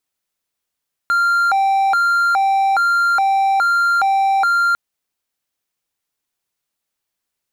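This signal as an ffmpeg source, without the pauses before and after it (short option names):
-f lavfi -i "aevalsrc='0.299*(1-4*abs(mod((1085.5*t+304.5/1.2*(0.5-abs(mod(1.2*t,1)-0.5)))+0.25,1)-0.5))':d=3.65:s=44100"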